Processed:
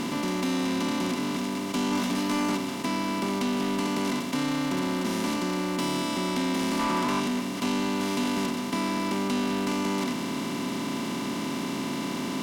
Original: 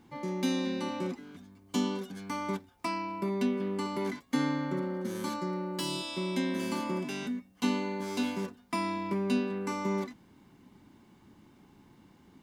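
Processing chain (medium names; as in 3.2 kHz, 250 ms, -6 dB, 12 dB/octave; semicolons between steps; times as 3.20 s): spectral levelling over time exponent 0.2; 1.90–2.55 s: doubling 17 ms -2.5 dB; 6.79–7.20 s: peaking EQ 1.1 kHz +9 dB 1.2 oct; saturation -21 dBFS, distortion -15 dB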